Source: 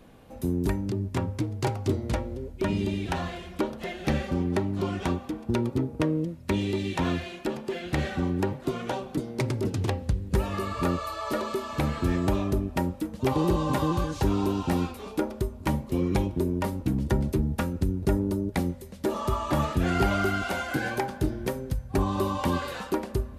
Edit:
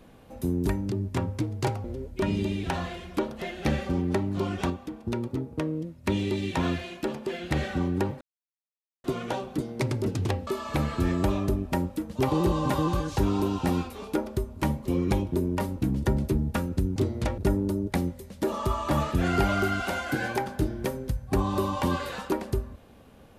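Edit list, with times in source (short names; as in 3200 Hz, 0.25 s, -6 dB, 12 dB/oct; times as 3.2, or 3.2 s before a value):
1.84–2.26 move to 18
5.12–6.46 gain -4 dB
8.63 insert silence 0.83 s
10.06–11.51 cut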